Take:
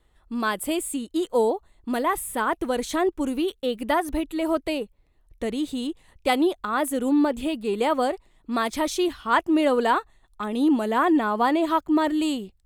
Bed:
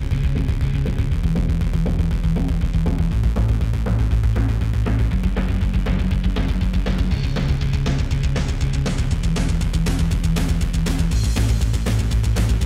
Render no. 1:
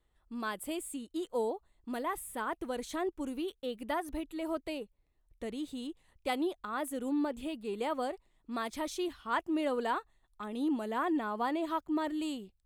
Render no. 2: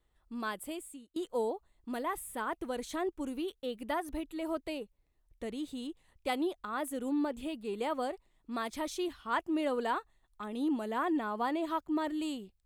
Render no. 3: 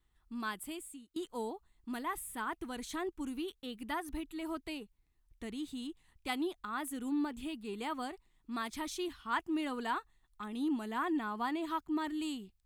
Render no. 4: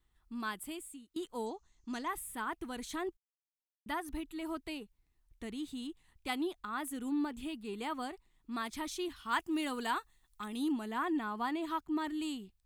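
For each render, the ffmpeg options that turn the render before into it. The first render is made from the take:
-af "volume=-11.5dB"
-filter_complex "[0:a]asplit=2[a][b];[a]atrim=end=1.16,asetpts=PTS-STARTPTS,afade=t=out:st=0.49:d=0.67:silence=0.125893[c];[b]atrim=start=1.16,asetpts=PTS-STARTPTS,afade=t=in:d=0.004:c=hsin:silence=0.125893[d];[c][d]concat=n=2:v=0:a=1"
-af "equalizer=f=550:t=o:w=0.61:g=-15"
-filter_complex "[0:a]asettb=1/sr,asplit=3[a][b][c];[a]atrim=end=1.464[d];[b]atrim=start=1.46:end=2.08,asetpts=PTS-STARTPTS,afade=t=in:d=0.004:c=qsin,afade=t=out:st=0.616:d=0.004:c=qsin,lowpass=f=6.3k:t=q:w=8.8[e];[c]atrim=start=2.076[f];[d][e]acrossfade=d=0.004:c1=hsin:c2=qsin[g];[g][f]acrossfade=d=0.004:c1=qsin:c2=hsin,asettb=1/sr,asplit=3[h][i][j];[h]atrim=end=9.164[k];[i]atrim=start=9.16:end=10.72,asetpts=PTS-STARTPTS,afade=t=in:d=0.004:c=qsin,afade=t=out:st=1.556:d=0.004:c=qsin,highshelf=f=3.6k:g=9.5[l];[j]atrim=start=10.716[m];[k][l]acrossfade=d=0.004:c1=hsin:c2=qsin[n];[n][m]acrossfade=d=0.004:c1=qsin:c2=hsin,asplit=3[o][p][q];[o]atrim=end=3.17,asetpts=PTS-STARTPTS,afade=t=out:st=3.166:d=0.004:c=hsin[r];[p]atrim=start=3.17:end=3.86,asetpts=PTS-STARTPTS,volume=0[s];[q]atrim=start=3.86,asetpts=PTS-STARTPTS,afade=t=in:d=0.004:c=hsin[t];[r][s][t]concat=n=3:v=0:a=1"

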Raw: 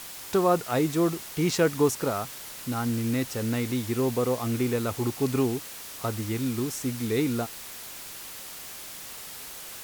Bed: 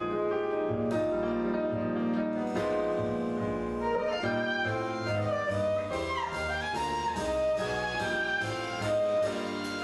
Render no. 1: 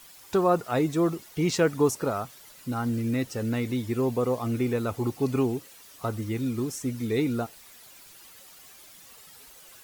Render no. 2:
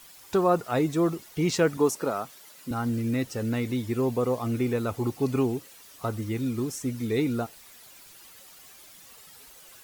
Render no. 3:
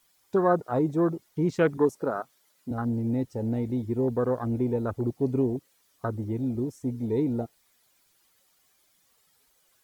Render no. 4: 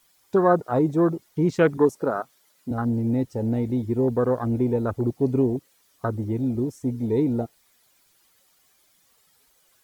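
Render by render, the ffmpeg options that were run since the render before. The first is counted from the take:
-af "afftdn=nr=12:nf=-41"
-filter_complex "[0:a]asettb=1/sr,asplit=3[a][b][c];[a]atrim=end=1.774[d];[b]atrim=start=1.77:end=2.71,asetpts=PTS-STARTPTS,afade=t=in:d=0.004:c=qsin,afade=t=out:st=0.936:d=0.004:c=qsin,highpass=190[e];[c]atrim=start=2.706[f];[d][e]acrossfade=d=0.004:c1=hsin:c2=qsin[g];[g][f]acrossfade=d=0.004:c1=qsin:c2=hsin"
-af "bandreject=f=2.7k:w=17,afwtdn=0.0316"
-af "volume=4dB"

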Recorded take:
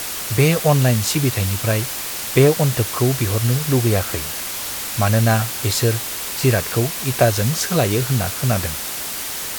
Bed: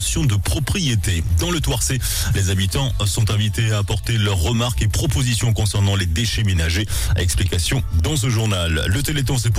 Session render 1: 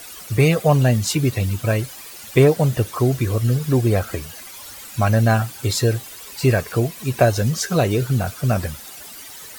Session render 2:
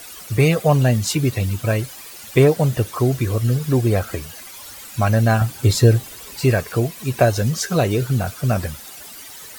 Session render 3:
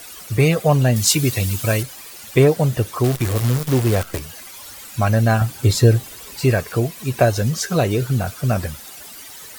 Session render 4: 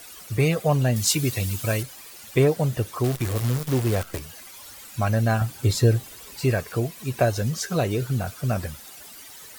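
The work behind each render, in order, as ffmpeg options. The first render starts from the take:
-af "afftdn=nr=14:nf=-27"
-filter_complex "[0:a]asettb=1/sr,asplit=3[a][b][c];[a]atrim=end=5.414[d];[b]atrim=start=5.41:end=6.41,asetpts=PTS-STARTPTS,afade=t=in:d=0.004:c=qsin,afade=t=out:st=0.996:d=0.004:c=qsin,lowshelf=f=440:g=7.5[e];[c]atrim=start=6.406[f];[d][e]acrossfade=d=0.004:c1=hsin:c2=qsin[g];[g][f]acrossfade=d=0.004:c1=qsin:c2=hsin"
-filter_complex "[0:a]asettb=1/sr,asplit=3[a][b][c];[a]atrim=end=0.964[d];[b]atrim=start=0.96:end=1.83,asetpts=PTS-STARTPTS,afade=t=in:d=0.004:c=qsin,afade=t=out:st=0.866:d=0.004:c=qsin,highshelf=f=2.9k:g=9.5[e];[c]atrim=start=1.826[f];[d][e]acrossfade=d=0.004:c1=hsin:c2=qsin[g];[g][f]acrossfade=d=0.004:c1=qsin:c2=hsin,asettb=1/sr,asplit=3[h][i][j];[h]atrim=end=3.044[k];[i]atrim=start=3.04:end=4.19,asetpts=PTS-STARTPTS,afade=t=in:d=0.004:c=qsin,afade=t=out:st=1.146:d=0.004:c=qsin,acrusher=bits=5:dc=4:mix=0:aa=0.000001[l];[j]atrim=start=4.186[m];[k][l]acrossfade=d=0.004:c1=hsin:c2=qsin[n];[n][m]acrossfade=d=0.004:c1=qsin:c2=hsin"
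-af "volume=-5.5dB"

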